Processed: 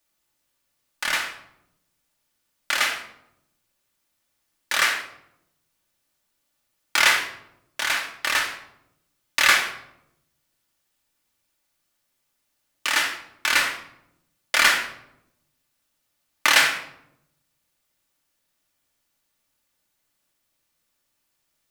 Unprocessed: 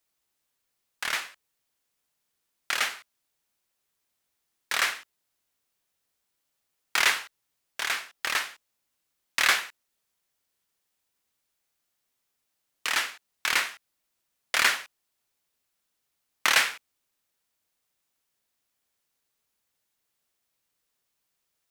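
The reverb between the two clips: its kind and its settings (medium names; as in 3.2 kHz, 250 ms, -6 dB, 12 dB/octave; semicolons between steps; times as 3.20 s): simulated room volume 2000 m³, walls furnished, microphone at 2.5 m; trim +3 dB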